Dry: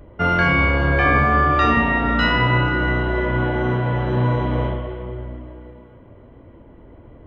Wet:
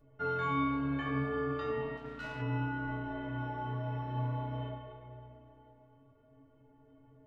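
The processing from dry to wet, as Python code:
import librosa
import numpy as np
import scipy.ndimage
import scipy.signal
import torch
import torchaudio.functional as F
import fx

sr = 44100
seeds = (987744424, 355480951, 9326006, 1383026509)

y = fx.stiff_resonator(x, sr, f0_hz=130.0, decay_s=0.56, stiffness=0.03)
y = fx.power_curve(y, sr, exponent=1.4, at=(1.97, 2.42))
y = y * 10.0 ** (-3.0 / 20.0)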